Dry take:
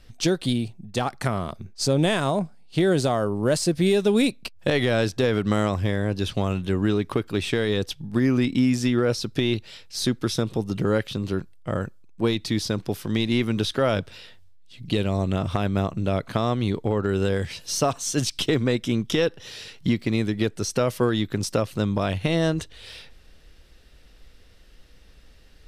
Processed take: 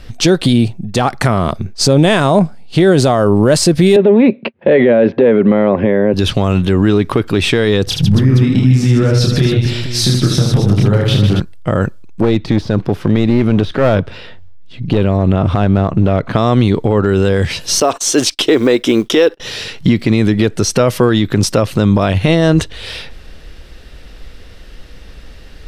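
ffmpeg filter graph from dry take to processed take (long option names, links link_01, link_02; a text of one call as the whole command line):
ffmpeg -i in.wav -filter_complex "[0:a]asettb=1/sr,asplit=3[link_01][link_02][link_03];[link_01]atrim=end=3.964[link_04];[link_02]atrim=start=3.96:end=6.14,asetpts=PTS-STARTPTS,afade=type=in:duration=0.004:curve=qsin,afade=type=out:start_time=2.176:duration=0.004:curve=qsin,aeval=exprs='clip(val(0),-1,0.0891)':channel_layout=same,highpass=frequency=140:width=0.5412,highpass=frequency=140:width=1.3066,equalizer=frequency=230:width_type=q:width=4:gain=8,equalizer=frequency=390:width_type=q:width=4:gain=8,equalizer=frequency=550:width_type=q:width=4:gain=10,equalizer=frequency=910:width_type=q:width=4:gain=3,equalizer=frequency=1300:width_type=q:width=4:gain=-4,equalizer=frequency=2000:width_type=q:width=4:gain=3,lowpass=frequency=2600:width=0.5412,lowpass=frequency=2600:width=1.3066[link_05];[link_03]atrim=start=6.136[link_06];[link_04][link_05]acrossfade=duration=0.004:curve1=hsin:curve2=qsin[link_07];[link_07][link_06]acrossfade=duration=0.004:curve1=qsin:curve2=hsin,asettb=1/sr,asplit=3[link_08][link_09][link_10];[link_08]atrim=end=7.844[link_11];[link_09]atrim=start=7.84:end=11.4,asetpts=PTS-STARTPTS,afade=type=in:duration=0.004:curve=qsin,afade=type=out:start_time=3.556:duration=0.004:curve=qsin,equalizer=frequency=120:width_type=o:width=0.8:gain=12.5,acompressor=threshold=-27dB:ratio=10:attack=3.2:release=140:knee=1:detection=peak,aecho=1:1:30|78|154.8|277.7|474.3:0.794|0.631|0.501|0.398|0.316,atrim=end_sample=156996[link_12];[link_10]atrim=start=11.396[link_13];[link_11][link_12]acrossfade=duration=0.004:curve1=hsin:curve2=qsin[link_14];[link_14][link_13]acrossfade=duration=0.004:curve1=qsin:curve2=hsin,asettb=1/sr,asplit=3[link_15][link_16][link_17];[link_15]atrim=end=12.224[link_18];[link_16]atrim=start=12.22:end=16.36,asetpts=PTS-STARTPTS,afade=type=in:duration=0.004:curve=qsin,afade=type=out:start_time=4.136:duration=0.004:curve=qsin,deesser=0.8,lowpass=frequency=1800:poles=1,aeval=exprs='clip(val(0),-1,0.0473)':channel_layout=same[link_19];[link_17]atrim=start=16.356[link_20];[link_18][link_19]acrossfade=duration=0.004:curve1=hsin:curve2=qsin[link_21];[link_21][link_20]acrossfade=duration=0.004:curve1=qsin:curve2=hsin,asettb=1/sr,asplit=3[link_22][link_23][link_24];[link_22]atrim=end=17.804[link_25];[link_23]atrim=start=17.8:end=19.4,asetpts=PTS-STARTPTS,afade=type=in:duration=0.004:curve=qsin,afade=type=out:start_time=1.596:duration=0.004:curve=qsin,agate=range=-28dB:threshold=-39dB:ratio=16:release=100:detection=peak,acrusher=bits=9:mode=log:mix=0:aa=0.000001,lowshelf=frequency=230:width_type=q:width=1.5:gain=-12.5[link_26];[link_24]atrim=start=19.396[link_27];[link_25][link_26]acrossfade=duration=0.004:curve1=hsin:curve2=qsin[link_28];[link_28][link_27]acrossfade=duration=0.004:curve1=qsin:curve2=hsin,highshelf=frequency=4600:gain=-6.5,alimiter=level_in=18dB:limit=-1dB:release=50:level=0:latency=1,volume=-1dB" out.wav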